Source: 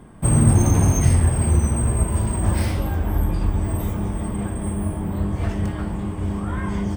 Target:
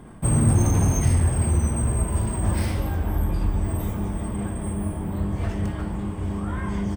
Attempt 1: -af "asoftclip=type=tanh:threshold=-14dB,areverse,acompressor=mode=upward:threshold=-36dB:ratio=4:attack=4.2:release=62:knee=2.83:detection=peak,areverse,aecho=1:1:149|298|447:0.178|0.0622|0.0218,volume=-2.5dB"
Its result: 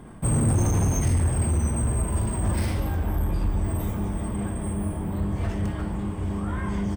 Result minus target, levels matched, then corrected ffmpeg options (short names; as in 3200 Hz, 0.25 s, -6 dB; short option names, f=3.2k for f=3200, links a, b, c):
soft clip: distortion +11 dB
-af "asoftclip=type=tanh:threshold=-6dB,areverse,acompressor=mode=upward:threshold=-36dB:ratio=4:attack=4.2:release=62:knee=2.83:detection=peak,areverse,aecho=1:1:149|298|447:0.178|0.0622|0.0218,volume=-2.5dB"